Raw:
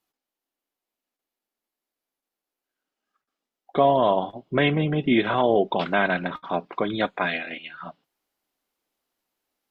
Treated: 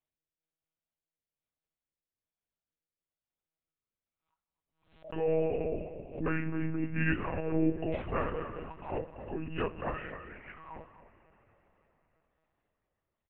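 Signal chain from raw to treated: gliding pitch shift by +2 st ending unshifted; low shelf 73 Hz +10.5 dB; varispeed -27%; rotary speaker horn 1.1 Hz; outdoor echo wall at 44 m, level -12 dB; two-slope reverb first 0.23 s, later 4.6 s, from -20 dB, DRR 7 dB; monotone LPC vocoder at 8 kHz 160 Hz; backwards sustainer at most 120 dB/s; gain -8.5 dB

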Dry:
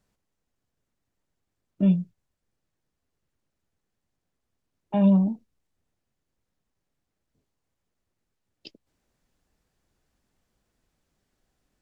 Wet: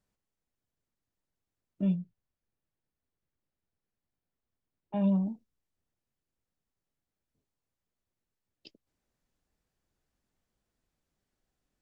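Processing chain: 1.95–4.96 air absorption 130 m; gain -8 dB

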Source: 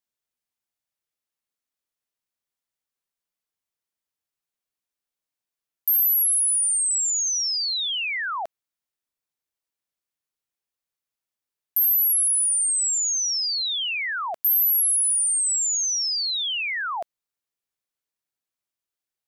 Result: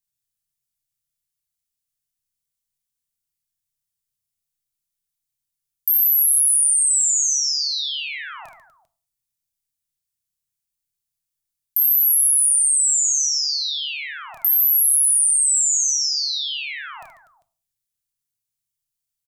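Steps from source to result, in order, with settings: EQ curve 130 Hz 0 dB, 430 Hz -25 dB, 9100 Hz -2 dB; compressor, threshold -24 dBFS, peak gain reduction 4 dB; reverse bouncing-ball echo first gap 30 ms, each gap 1.5×, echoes 5; shoebox room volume 380 m³, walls furnished, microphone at 0.46 m; gain +7 dB

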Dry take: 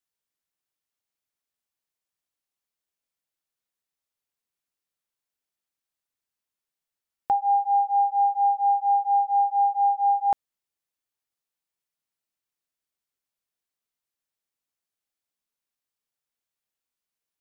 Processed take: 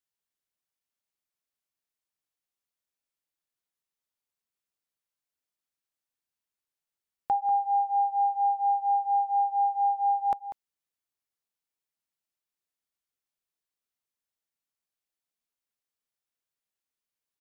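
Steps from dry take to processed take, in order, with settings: echo 0.193 s -12.5 dB; gain -3.5 dB

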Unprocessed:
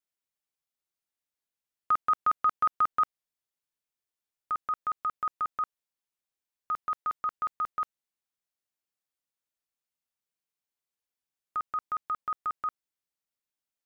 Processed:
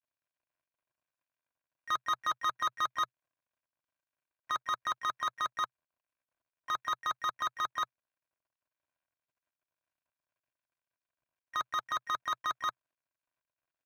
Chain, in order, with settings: median filter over 25 samples; thirty-one-band EQ 125 Hz +5 dB, 200 Hz -9 dB, 630 Hz +7 dB, 1000 Hz +8 dB, 1600 Hz +10 dB, 2500 Hz +9 dB; in parallel at -2 dB: negative-ratio compressor -35 dBFS, ratio -1; on the sum: limiter -21 dBFS, peak gain reduction 5 dB; harmoniser -3 st -16 dB, +7 st -17 dB; notch comb 430 Hz

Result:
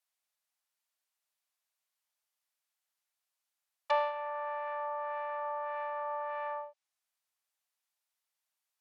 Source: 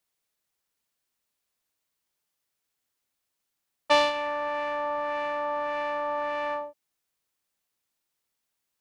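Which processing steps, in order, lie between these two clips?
steep high-pass 590 Hz 36 dB/oct; treble ducked by the level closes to 1300 Hz, closed at -27 dBFS; gain -5 dB

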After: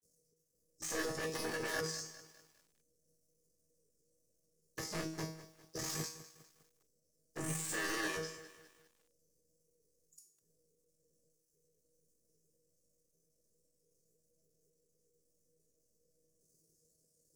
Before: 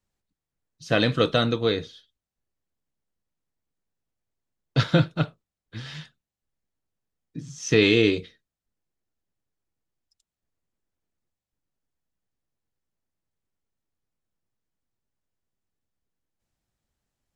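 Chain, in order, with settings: cycle switcher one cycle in 3, muted; elliptic band-stop 410–4400 Hz, stop band 40 dB; compressor 6:1, threshold -36 dBFS, peak gain reduction 18 dB; overdrive pedal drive 28 dB, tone 6400 Hz, clips at -24 dBFS; wavefolder -33 dBFS; grains 0.1 s, grains 20/s, spray 19 ms, pitch spread up and down by 0 st; resonator 160 Hz, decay 0.48 s, harmonics all, mix 90%; small resonant body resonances 1200/1700 Hz, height 14 dB, ringing for 35 ms; formant shift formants +5 st; lo-fi delay 0.202 s, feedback 55%, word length 11-bit, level -15 dB; gain +11.5 dB

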